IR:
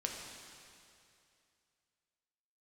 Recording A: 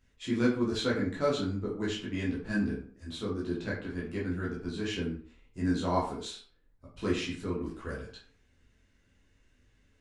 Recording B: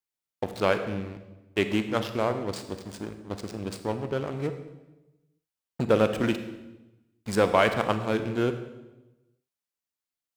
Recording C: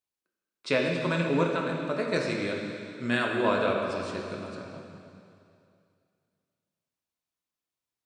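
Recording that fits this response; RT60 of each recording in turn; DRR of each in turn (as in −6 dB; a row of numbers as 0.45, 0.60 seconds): C; 0.45, 1.0, 2.6 seconds; −6.5, 8.5, −0.5 decibels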